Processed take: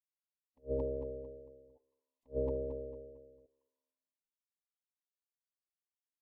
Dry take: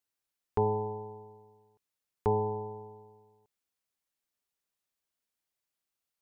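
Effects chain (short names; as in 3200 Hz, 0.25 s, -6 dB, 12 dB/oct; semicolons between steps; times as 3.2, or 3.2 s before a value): spectral noise reduction 28 dB; compressor 1.5:1, threshold -41 dBFS, peak gain reduction 6.5 dB; thinning echo 0.226 s, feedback 36%, high-pass 470 Hz, level -21 dB; formant-preserving pitch shift -8.5 st; Butterworth band-stop 1400 Hz, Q 1.9; attack slew limiter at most 360 dB/s; gain +3 dB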